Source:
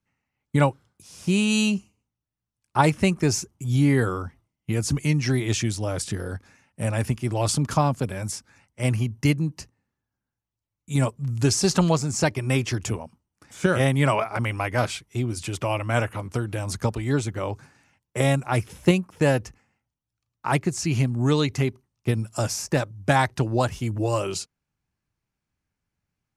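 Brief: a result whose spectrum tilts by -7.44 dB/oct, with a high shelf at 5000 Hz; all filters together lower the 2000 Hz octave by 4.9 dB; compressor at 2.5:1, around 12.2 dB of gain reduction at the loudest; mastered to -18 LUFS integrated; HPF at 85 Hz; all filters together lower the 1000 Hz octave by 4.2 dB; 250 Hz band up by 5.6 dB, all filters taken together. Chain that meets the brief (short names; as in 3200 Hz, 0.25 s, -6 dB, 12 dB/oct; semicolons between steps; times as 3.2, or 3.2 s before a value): HPF 85 Hz; bell 250 Hz +8 dB; bell 1000 Hz -5 dB; bell 2000 Hz -4 dB; high shelf 5000 Hz -5.5 dB; compressor 2.5:1, threshold -30 dBFS; gain +13.5 dB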